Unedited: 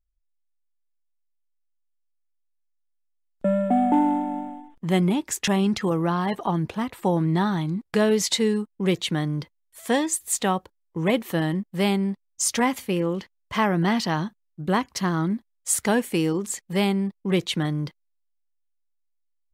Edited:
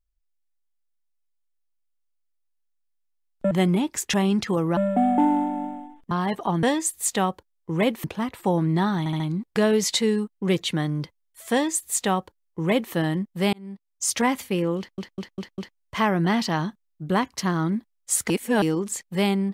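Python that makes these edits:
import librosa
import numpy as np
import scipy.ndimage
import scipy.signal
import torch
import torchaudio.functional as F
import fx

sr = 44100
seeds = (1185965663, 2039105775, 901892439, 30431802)

y = fx.edit(x, sr, fx.move(start_s=4.85, length_s=1.26, to_s=3.51),
    fx.stutter(start_s=7.58, slice_s=0.07, count=4),
    fx.duplicate(start_s=9.9, length_s=1.41, to_s=6.63),
    fx.fade_in_span(start_s=11.91, length_s=0.61),
    fx.stutter(start_s=13.16, slice_s=0.2, count=5),
    fx.reverse_span(start_s=15.88, length_s=0.32), tone=tone)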